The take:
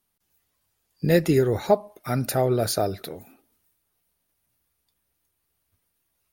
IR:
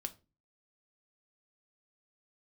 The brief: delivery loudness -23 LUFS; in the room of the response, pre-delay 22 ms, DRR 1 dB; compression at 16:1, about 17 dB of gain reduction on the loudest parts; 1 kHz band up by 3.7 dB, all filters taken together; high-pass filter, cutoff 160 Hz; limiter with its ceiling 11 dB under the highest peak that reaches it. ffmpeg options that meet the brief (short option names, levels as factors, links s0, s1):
-filter_complex "[0:a]highpass=160,equalizer=f=1000:t=o:g=5.5,acompressor=threshold=0.0398:ratio=16,alimiter=level_in=1.33:limit=0.0631:level=0:latency=1,volume=0.75,asplit=2[s0][s1];[1:a]atrim=start_sample=2205,adelay=22[s2];[s1][s2]afir=irnorm=-1:irlink=0,volume=1.12[s3];[s0][s3]amix=inputs=2:normalize=0,volume=3.98"